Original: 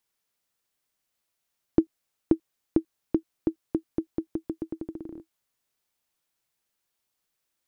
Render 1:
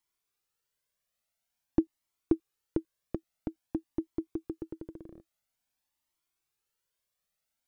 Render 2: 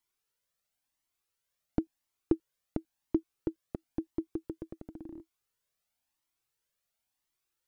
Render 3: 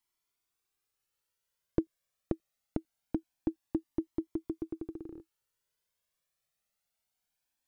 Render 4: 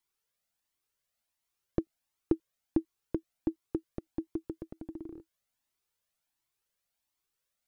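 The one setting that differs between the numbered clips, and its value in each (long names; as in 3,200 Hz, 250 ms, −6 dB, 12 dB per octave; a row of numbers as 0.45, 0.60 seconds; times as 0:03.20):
flanger whose copies keep moving one way, speed: 0.49, 0.96, 0.24, 1.4 Hertz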